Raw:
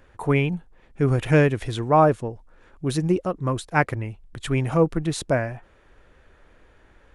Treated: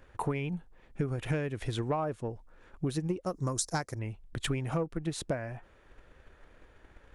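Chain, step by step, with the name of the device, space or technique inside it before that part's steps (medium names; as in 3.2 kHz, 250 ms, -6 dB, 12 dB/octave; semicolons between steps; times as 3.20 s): drum-bus smash (transient shaper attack +7 dB, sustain 0 dB; compression 10:1, threshold -23 dBFS, peak gain reduction 15 dB; saturation -15.5 dBFS, distortion -21 dB); 3.26–3.99 s: resonant high shelf 4.1 kHz +11.5 dB, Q 3; trim -4 dB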